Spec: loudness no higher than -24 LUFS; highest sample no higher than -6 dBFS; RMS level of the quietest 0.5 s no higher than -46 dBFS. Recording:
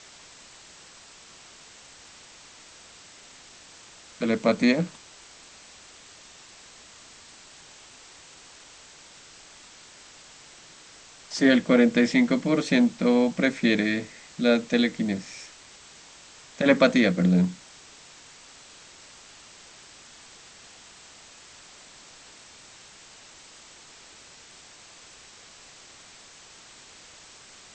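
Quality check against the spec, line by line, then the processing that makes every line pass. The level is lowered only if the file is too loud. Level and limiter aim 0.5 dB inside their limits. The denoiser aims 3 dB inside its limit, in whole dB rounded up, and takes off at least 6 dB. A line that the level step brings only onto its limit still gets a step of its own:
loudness -23.0 LUFS: fail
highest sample -5.0 dBFS: fail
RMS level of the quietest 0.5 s -50 dBFS: OK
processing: gain -1.5 dB

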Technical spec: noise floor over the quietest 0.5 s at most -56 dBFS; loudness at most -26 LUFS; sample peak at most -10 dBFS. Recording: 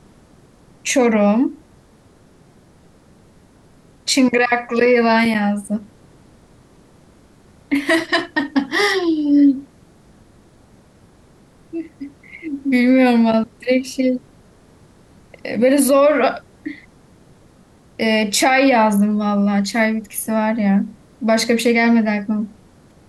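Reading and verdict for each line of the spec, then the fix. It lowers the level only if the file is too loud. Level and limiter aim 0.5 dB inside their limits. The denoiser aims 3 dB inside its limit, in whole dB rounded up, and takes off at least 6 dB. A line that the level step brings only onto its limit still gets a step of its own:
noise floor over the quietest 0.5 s -50 dBFS: fail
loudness -16.5 LUFS: fail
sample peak -5.5 dBFS: fail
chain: gain -10 dB

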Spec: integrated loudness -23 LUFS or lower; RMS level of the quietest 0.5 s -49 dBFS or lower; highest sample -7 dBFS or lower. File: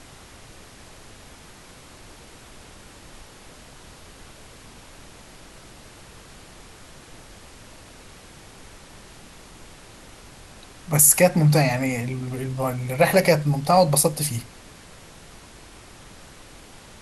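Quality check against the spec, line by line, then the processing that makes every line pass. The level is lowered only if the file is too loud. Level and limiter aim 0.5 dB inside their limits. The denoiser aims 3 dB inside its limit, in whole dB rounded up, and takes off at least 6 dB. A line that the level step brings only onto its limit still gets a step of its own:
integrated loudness -19.5 LUFS: fail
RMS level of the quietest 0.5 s -46 dBFS: fail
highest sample -3.5 dBFS: fail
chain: gain -4 dB

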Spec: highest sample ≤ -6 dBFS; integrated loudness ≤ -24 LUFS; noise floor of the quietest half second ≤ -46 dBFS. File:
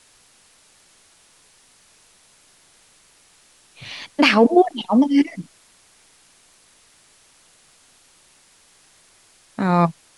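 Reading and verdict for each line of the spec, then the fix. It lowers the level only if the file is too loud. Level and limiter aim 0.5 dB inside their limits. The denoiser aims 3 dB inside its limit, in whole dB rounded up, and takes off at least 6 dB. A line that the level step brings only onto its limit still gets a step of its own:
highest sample -3.0 dBFS: fail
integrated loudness -17.5 LUFS: fail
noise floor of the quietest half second -55 dBFS: OK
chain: gain -7 dB

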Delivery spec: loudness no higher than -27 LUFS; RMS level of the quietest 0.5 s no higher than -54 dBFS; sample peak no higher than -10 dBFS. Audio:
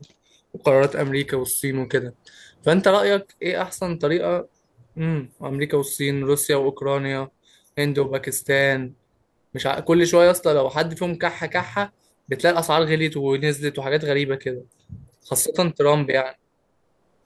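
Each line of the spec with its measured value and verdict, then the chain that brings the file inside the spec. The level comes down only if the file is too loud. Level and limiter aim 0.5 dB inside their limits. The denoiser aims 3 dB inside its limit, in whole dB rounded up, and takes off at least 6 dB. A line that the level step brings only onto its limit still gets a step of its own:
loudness -21.5 LUFS: fail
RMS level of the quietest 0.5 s -67 dBFS: OK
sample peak -5.0 dBFS: fail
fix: gain -6 dB

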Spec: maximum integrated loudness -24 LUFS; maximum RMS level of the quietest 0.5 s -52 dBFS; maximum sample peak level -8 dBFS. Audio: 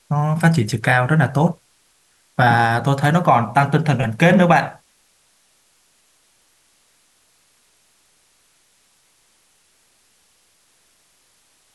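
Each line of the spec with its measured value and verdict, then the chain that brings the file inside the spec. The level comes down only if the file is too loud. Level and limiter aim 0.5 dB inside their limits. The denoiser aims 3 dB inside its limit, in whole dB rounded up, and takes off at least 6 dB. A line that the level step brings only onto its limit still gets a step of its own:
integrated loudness -16.5 LUFS: fail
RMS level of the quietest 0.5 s -60 dBFS: OK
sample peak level -3.0 dBFS: fail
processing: gain -8 dB

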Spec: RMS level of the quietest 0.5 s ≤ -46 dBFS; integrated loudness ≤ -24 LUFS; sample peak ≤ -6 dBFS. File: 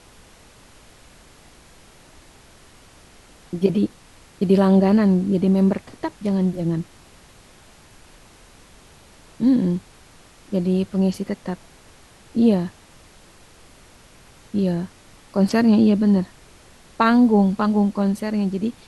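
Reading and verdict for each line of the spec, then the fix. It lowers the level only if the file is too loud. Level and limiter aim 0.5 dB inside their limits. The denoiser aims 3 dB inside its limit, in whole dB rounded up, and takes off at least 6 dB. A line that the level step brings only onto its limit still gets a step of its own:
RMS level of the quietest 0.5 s -49 dBFS: OK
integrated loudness -20.0 LUFS: fail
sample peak -4.5 dBFS: fail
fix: gain -4.5 dB

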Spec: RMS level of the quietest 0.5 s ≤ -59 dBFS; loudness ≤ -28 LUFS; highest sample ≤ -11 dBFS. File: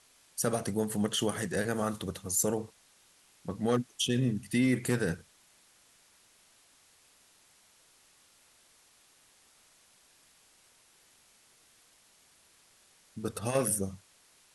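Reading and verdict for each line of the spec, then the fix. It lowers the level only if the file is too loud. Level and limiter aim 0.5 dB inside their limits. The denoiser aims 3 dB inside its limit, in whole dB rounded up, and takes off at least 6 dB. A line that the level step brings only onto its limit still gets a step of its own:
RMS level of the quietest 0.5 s -64 dBFS: OK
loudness -31.5 LUFS: OK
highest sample -16.0 dBFS: OK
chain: none

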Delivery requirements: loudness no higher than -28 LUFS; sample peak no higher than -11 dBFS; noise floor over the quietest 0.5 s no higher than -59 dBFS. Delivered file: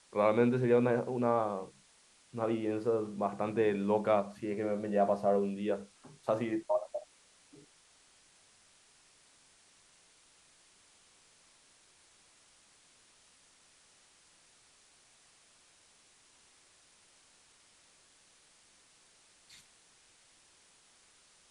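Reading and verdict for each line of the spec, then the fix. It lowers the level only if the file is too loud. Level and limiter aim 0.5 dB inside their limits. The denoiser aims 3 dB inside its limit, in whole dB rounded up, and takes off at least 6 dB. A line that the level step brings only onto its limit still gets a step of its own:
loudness -32.0 LUFS: OK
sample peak -14.0 dBFS: OK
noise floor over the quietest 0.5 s -65 dBFS: OK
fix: none

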